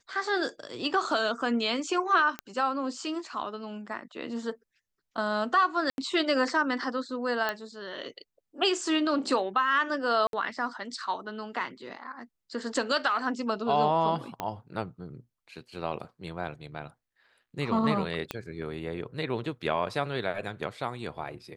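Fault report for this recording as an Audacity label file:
2.390000	2.390000	pop -18 dBFS
5.900000	5.980000	dropout 81 ms
7.490000	7.490000	pop -15 dBFS
10.270000	10.330000	dropout 62 ms
14.400000	14.400000	pop -17 dBFS
18.310000	18.310000	pop -16 dBFS

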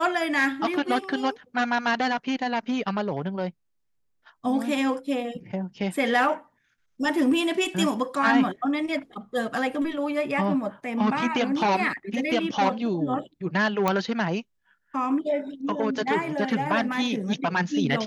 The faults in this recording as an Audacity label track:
13.880000	13.880000	pop -9 dBFS

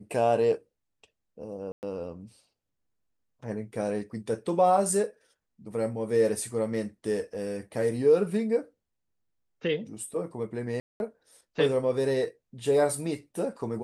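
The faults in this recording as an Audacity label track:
1.720000	1.830000	dropout 109 ms
10.800000	11.000000	dropout 201 ms

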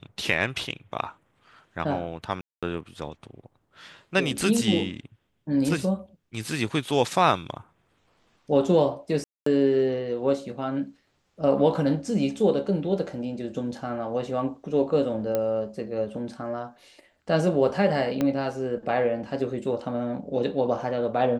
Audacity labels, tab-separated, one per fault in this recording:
2.410000	2.630000	dropout 216 ms
9.240000	9.460000	dropout 224 ms
15.350000	15.350000	pop -13 dBFS
18.210000	18.210000	pop -13 dBFS

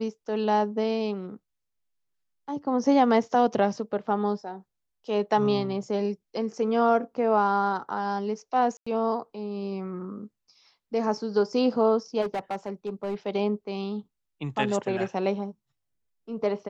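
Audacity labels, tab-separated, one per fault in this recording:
8.770000	8.870000	dropout 95 ms
12.210000	13.150000	clipped -25.5 dBFS

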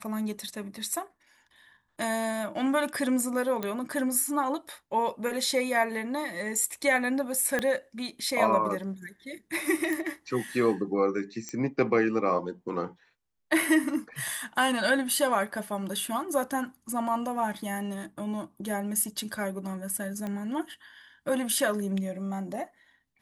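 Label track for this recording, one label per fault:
3.630000	3.630000	pop -17 dBFS
7.590000	7.590000	pop -14 dBFS
9.930000	9.930000	pop
11.490000	11.490000	pop -22 dBFS
20.270000	20.270000	pop -22 dBFS

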